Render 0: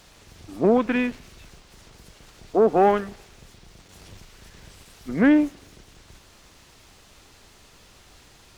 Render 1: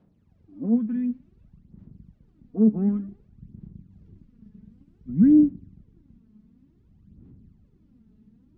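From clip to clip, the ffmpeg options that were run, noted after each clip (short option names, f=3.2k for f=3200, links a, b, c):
-af "asubboost=boost=9.5:cutoff=210,aphaser=in_gain=1:out_gain=1:delay=4.7:decay=0.68:speed=0.55:type=sinusoidal,bandpass=f=210:t=q:w=2:csg=0,volume=-7dB"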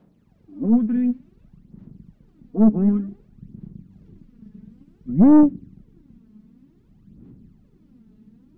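-af "equalizer=f=72:w=1.3:g=-12,aeval=exprs='(tanh(5.62*val(0)+0.35)-tanh(0.35))/5.62':c=same,volume=8dB"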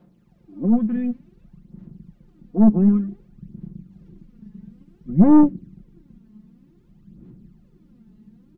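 -af "aecho=1:1:5.7:0.51"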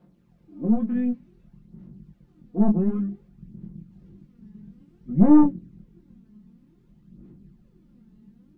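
-af "flanger=delay=20:depth=4.9:speed=0.95"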